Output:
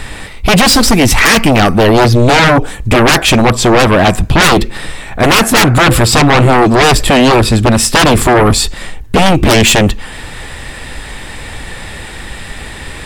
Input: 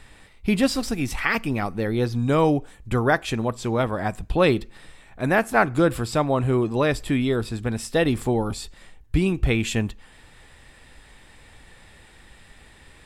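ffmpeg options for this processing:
ffmpeg -i in.wav -af "acontrast=61,aeval=exprs='0.794*sin(PI/2*5.62*val(0)/0.794)':channel_layout=same,volume=-1.5dB" out.wav

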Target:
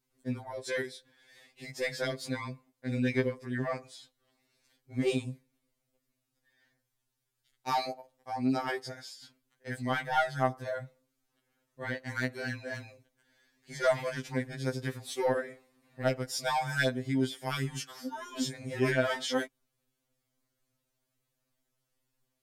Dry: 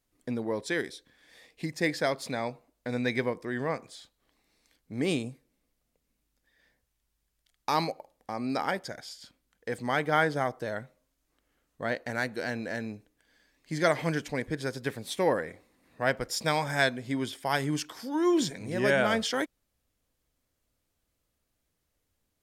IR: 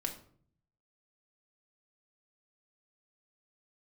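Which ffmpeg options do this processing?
-af "asoftclip=type=tanh:threshold=-15.5dB,afftfilt=real='re*2.45*eq(mod(b,6),0)':imag='im*2.45*eq(mod(b,6),0)':win_size=2048:overlap=0.75"

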